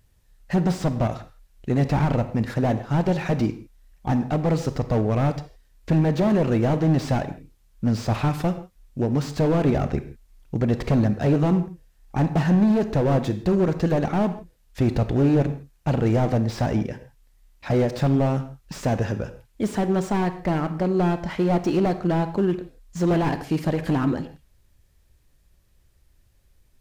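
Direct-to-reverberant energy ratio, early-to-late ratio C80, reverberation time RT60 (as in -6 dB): 10.0 dB, 14.5 dB, not exponential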